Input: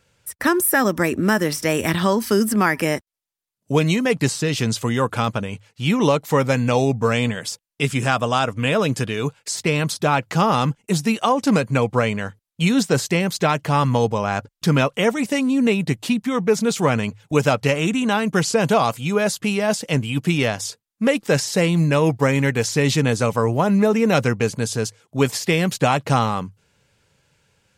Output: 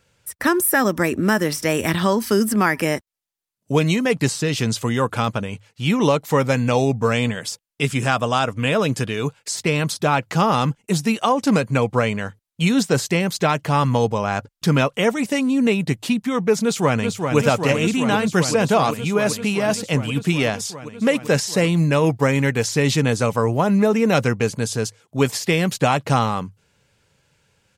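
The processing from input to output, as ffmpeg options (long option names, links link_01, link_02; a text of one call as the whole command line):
ffmpeg -i in.wav -filter_complex "[0:a]asplit=2[link_01][link_02];[link_02]afade=type=in:start_time=16.63:duration=0.01,afade=type=out:start_time=17.37:duration=0.01,aecho=0:1:390|780|1170|1560|1950|2340|2730|3120|3510|3900|4290|4680:0.530884|0.451252|0.383564|0.326029|0.277125|0.235556|0.200223|0.170189|0.144661|0.122962|0.104518|0.0888399[link_03];[link_01][link_03]amix=inputs=2:normalize=0" out.wav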